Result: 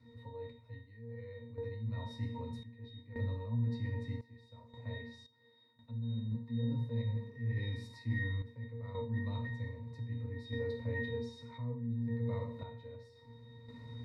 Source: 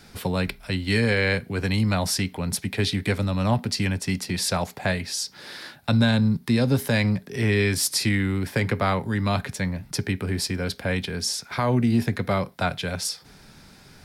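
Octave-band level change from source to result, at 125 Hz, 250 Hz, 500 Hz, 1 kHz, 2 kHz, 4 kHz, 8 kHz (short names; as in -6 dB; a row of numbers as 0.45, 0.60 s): -12.0 dB, -18.0 dB, -16.0 dB, -22.5 dB, -19.5 dB, -25.0 dB, under -40 dB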